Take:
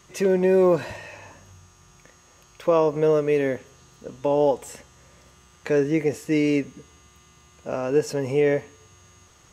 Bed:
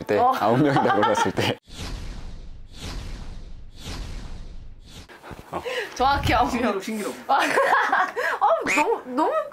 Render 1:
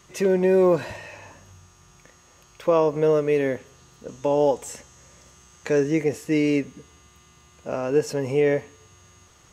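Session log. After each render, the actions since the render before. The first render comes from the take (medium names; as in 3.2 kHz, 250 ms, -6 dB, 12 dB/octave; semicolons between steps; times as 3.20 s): 4.08–6.04 s: peaking EQ 6.6 kHz +6 dB 0.67 oct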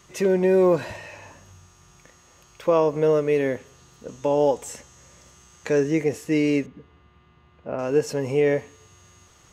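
6.66–7.79 s: distance through air 410 m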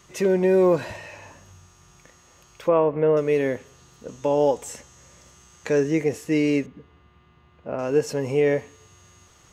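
2.68–3.17 s: low-pass 2.6 kHz 24 dB/octave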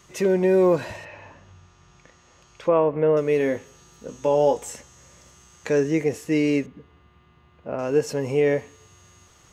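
1.04–2.68 s: low-pass 3 kHz -> 7.3 kHz; 3.38–4.71 s: doubling 19 ms -7 dB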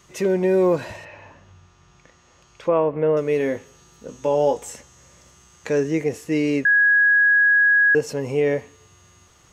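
6.65–7.95 s: bleep 1.66 kHz -12.5 dBFS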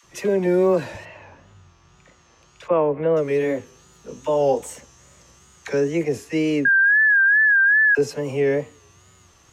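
phase dispersion lows, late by 42 ms, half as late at 640 Hz; wow and flutter 90 cents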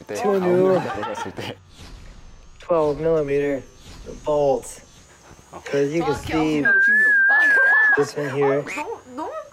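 add bed -8 dB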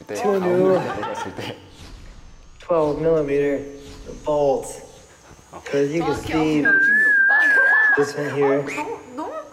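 FDN reverb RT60 1.3 s, low-frequency decay 1.05×, high-frequency decay 1×, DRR 11.5 dB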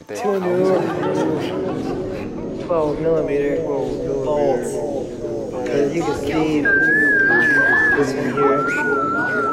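bucket-brigade echo 469 ms, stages 2048, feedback 73%, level -7 dB; ever faster or slower copies 461 ms, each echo -3 st, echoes 3, each echo -6 dB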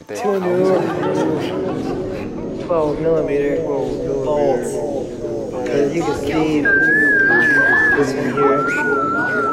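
trim +1.5 dB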